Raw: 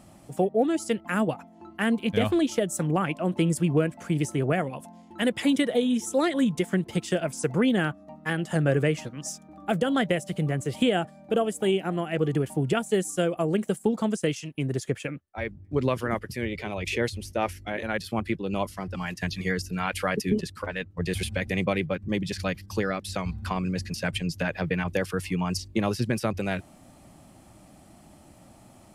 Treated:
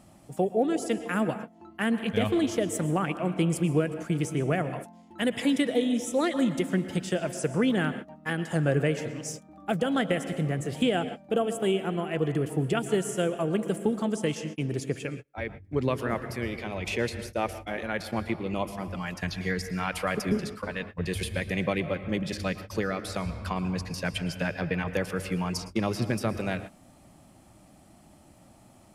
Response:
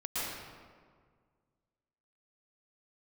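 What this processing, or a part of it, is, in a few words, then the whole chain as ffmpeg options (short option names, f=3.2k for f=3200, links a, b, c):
keyed gated reverb: -filter_complex "[0:a]asplit=3[a][b][c];[1:a]atrim=start_sample=2205[d];[b][d]afir=irnorm=-1:irlink=0[e];[c]apad=whole_len=1276264[f];[e][f]sidechaingate=range=-36dB:threshold=-39dB:ratio=16:detection=peak,volume=-14.5dB[g];[a][g]amix=inputs=2:normalize=0,volume=-3dB"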